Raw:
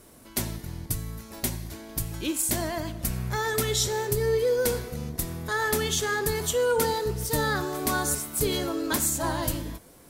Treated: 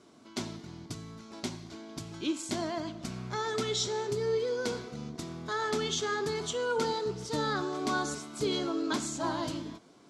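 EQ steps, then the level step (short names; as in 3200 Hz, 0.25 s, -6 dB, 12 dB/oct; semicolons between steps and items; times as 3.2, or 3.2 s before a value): air absorption 88 m; speaker cabinet 210–9800 Hz, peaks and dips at 520 Hz -10 dB, 870 Hz -4 dB, 1800 Hz -9 dB, 2600 Hz -4 dB, 9100 Hz -9 dB; 0.0 dB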